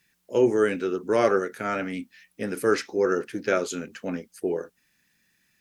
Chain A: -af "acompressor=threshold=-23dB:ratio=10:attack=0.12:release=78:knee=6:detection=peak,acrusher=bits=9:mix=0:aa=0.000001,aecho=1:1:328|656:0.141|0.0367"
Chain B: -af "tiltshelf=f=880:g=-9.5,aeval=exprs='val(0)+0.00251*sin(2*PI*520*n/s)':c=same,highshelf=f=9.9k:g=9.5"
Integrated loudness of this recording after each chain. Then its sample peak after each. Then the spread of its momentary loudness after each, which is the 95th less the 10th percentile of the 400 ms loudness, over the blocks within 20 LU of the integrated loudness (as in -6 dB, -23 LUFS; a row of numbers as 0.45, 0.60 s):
-32.5, -26.5 LUFS; -20.5, -6.5 dBFS; 7, 13 LU